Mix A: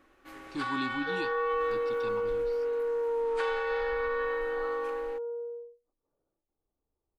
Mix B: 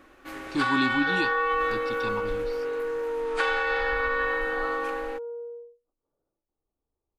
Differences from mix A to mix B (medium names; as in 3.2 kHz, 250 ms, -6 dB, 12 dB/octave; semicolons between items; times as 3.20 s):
speech +8.5 dB; first sound +9.5 dB; reverb: off